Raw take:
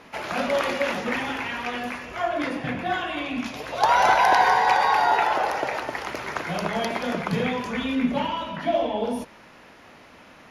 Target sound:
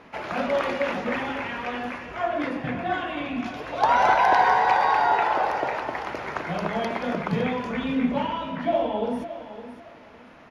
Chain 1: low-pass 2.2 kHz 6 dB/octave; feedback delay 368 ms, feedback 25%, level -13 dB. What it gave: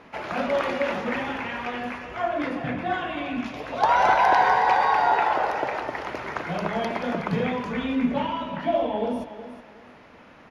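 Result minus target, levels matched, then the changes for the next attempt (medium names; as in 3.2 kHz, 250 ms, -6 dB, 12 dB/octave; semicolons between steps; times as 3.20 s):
echo 192 ms early
change: feedback delay 560 ms, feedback 25%, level -13 dB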